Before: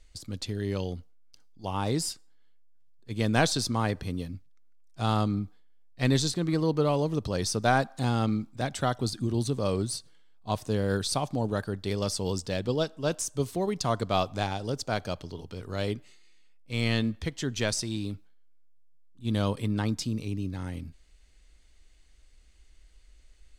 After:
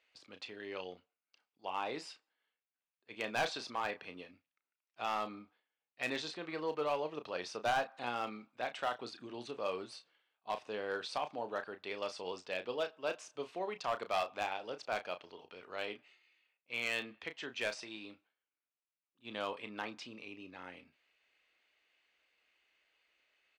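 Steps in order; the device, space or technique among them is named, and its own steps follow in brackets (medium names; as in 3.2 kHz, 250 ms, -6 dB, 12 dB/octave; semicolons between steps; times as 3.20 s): megaphone (band-pass 600–2700 Hz; peaking EQ 2.6 kHz +7.5 dB 0.43 oct; hard clipper -23.5 dBFS, distortion -12 dB; doubling 33 ms -10 dB); trim -4 dB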